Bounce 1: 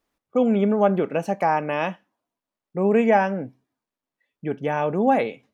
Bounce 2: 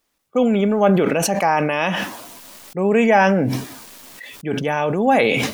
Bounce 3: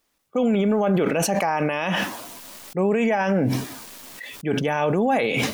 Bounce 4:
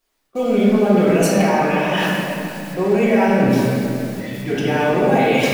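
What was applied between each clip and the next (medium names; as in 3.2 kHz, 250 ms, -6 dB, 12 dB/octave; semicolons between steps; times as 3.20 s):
treble shelf 2.3 kHz +10.5 dB; decay stretcher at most 23 dB/s; trim +1.5 dB
peak limiter -12.5 dBFS, peak gain reduction 11 dB
in parallel at -11.5 dB: bit crusher 5-bit; on the sum: reverberation RT60 2.7 s, pre-delay 3 ms, DRR -8.5 dB; trim -6 dB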